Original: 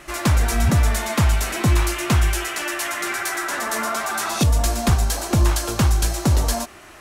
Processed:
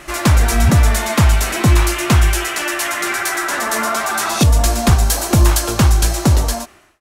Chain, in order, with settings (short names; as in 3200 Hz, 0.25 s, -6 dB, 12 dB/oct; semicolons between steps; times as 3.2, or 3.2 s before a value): ending faded out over 0.73 s; 5.05–5.6 high shelf 10000 Hz +6.5 dB; gain +5.5 dB